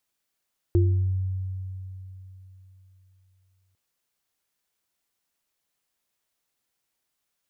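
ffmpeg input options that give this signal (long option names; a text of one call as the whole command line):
ffmpeg -f lavfi -i "aevalsrc='0.158*pow(10,-3*t/3.52)*sin(2*PI*94.1*t)+0.112*pow(10,-3*t/0.53)*sin(2*PI*347*t)':duration=3:sample_rate=44100" out.wav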